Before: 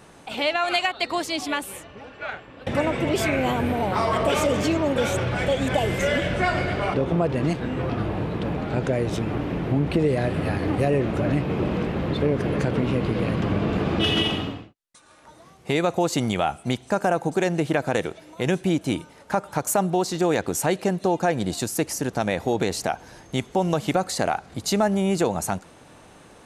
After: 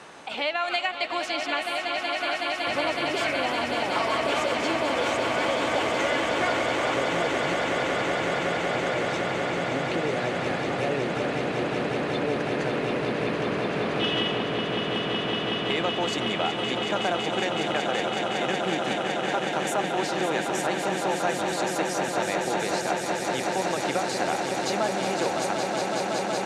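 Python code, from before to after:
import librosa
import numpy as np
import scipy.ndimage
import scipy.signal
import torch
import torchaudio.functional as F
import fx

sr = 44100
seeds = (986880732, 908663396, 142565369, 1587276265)

y = fx.highpass(x, sr, hz=720.0, slope=6)
y = fx.air_absorb(y, sr, metres=65.0)
y = fx.echo_swell(y, sr, ms=186, loudest=8, wet_db=-8)
y = fx.band_squash(y, sr, depth_pct=40)
y = y * 10.0 ** (-2.0 / 20.0)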